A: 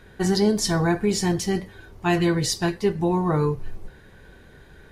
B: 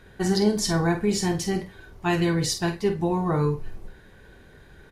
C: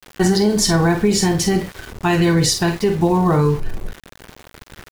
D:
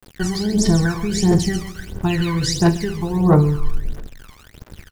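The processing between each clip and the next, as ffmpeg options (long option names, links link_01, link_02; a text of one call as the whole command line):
ffmpeg -i in.wav -filter_complex "[0:a]asplit=2[link_01][link_02];[link_02]adelay=48,volume=-9dB[link_03];[link_01][link_03]amix=inputs=2:normalize=0,volume=-2dB" out.wav
ffmpeg -i in.wav -filter_complex "[0:a]asplit=2[link_01][link_02];[link_02]acompressor=threshold=-30dB:ratio=6,volume=-3dB[link_03];[link_01][link_03]amix=inputs=2:normalize=0,alimiter=limit=-14.5dB:level=0:latency=1:release=105,aeval=exprs='val(0)*gte(abs(val(0)),0.0112)':channel_layout=same,volume=8dB" out.wav
ffmpeg -i in.wav -filter_complex "[0:a]aecho=1:1:136|272|408|544:0.282|0.0986|0.0345|0.0121,aphaser=in_gain=1:out_gain=1:delay=1:decay=0.77:speed=1.5:type=triangular,acrossover=split=8300[link_01][link_02];[link_02]acompressor=threshold=-33dB:ratio=4:attack=1:release=60[link_03];[link_01][link_03]amix=inputs=2:normalize=0,volume=-7.5dB" out.wav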